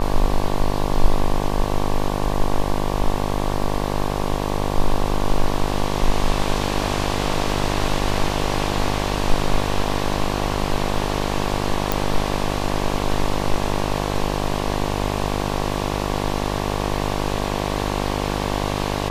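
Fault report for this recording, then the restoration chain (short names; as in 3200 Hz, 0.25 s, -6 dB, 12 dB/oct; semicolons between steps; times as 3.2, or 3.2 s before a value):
buzz 50 Hz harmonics 23 -24 dBFS
11.92 pop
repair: de-click; de-hum 50 Hz, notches 23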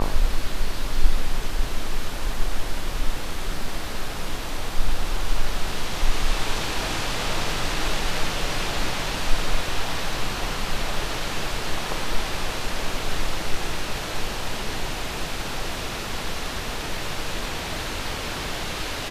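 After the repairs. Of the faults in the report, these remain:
none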